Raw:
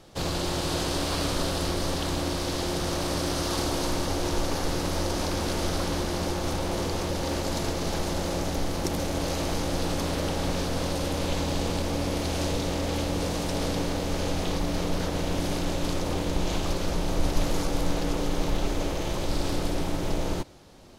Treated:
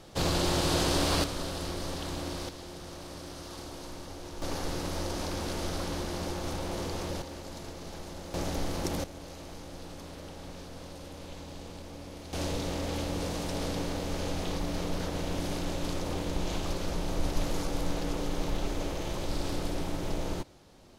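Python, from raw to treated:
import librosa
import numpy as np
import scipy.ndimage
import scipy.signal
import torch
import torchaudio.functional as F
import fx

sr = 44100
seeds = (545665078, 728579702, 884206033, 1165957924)

y = fx.gain(x, sr, db=fx.steps((0.0, 1.0), (1.24, -7.5), (2.49, -15.0), (4.42, -6.0), (7.22, -13.5), (8.34, -4.0), (9.04, -16.0), (12.33, -5.0)))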